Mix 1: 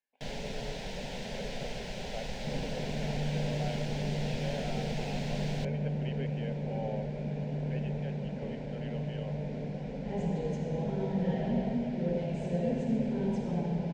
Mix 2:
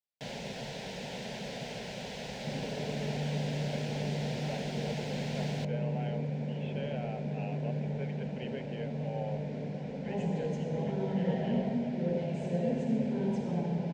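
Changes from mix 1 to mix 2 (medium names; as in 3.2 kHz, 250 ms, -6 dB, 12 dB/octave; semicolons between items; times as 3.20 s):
speech: entry +2.35 s; master: add high-pass 98 Hz 12 dB/octave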